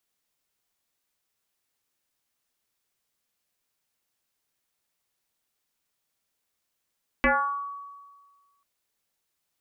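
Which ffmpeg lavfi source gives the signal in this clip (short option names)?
-f lavfi -i "aevalsrc='0.15*pow(10,-3*t/1.57)*sin(2*PI*1130*t+4.6*pow(10,-3*t/0.69)*sin(2*PI*0.26*1130*t))':d=1.39:s=44100"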